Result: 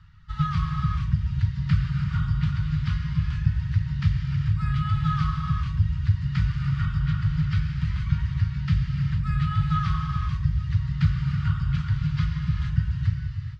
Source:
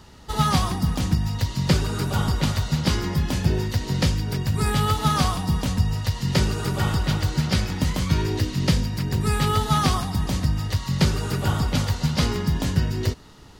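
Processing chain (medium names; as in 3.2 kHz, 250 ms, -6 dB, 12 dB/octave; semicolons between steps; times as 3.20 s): elliptic band-stop 150–1300 Hz, stop band 50 dB; tape spacing loss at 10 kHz 39 dB; reverb removal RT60 1.4 s; dynamic bell 420 Hz, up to +4 dB, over -47 dBFS, Q 1.3; gated-style reverb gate 490 ms flat, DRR 0.5 dB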